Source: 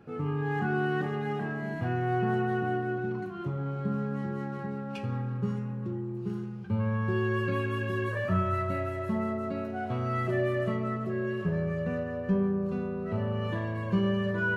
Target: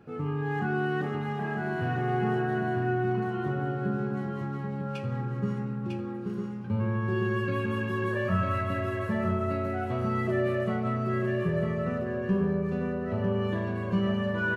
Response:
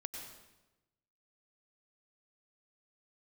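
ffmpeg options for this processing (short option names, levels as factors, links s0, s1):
-af "aecho=1:1:950:0.631"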